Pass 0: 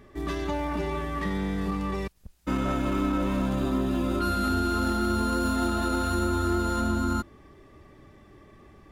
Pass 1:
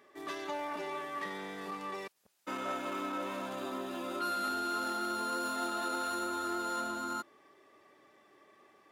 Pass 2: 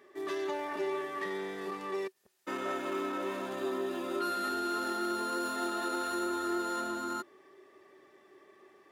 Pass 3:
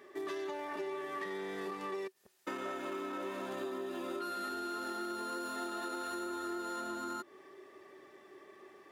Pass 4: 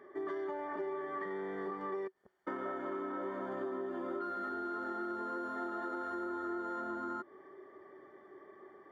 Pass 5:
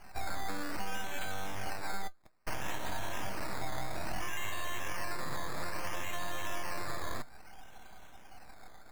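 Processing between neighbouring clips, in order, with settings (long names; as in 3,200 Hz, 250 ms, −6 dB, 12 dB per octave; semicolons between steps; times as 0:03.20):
high-pass filter 480 Hz 12 dB per octave; level −4.5 dB
hollow resonant body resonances 380/1,800 Hz, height 12 dB, ringing for 70 ms
downward compressor 6 to 1, threshold −40 dBFS, peak gain reduction 10 dB; level +3 dB
Savitzky-Golay smoothing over 41 samples; level +1 dB
full-wave rectification; tuned comb filter 310 Hz, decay 0.18 s, harmonics all, mix 50%; sample-and-hold swept by an LFO 12×, swing 60% 0.6 Hz; level +9 dB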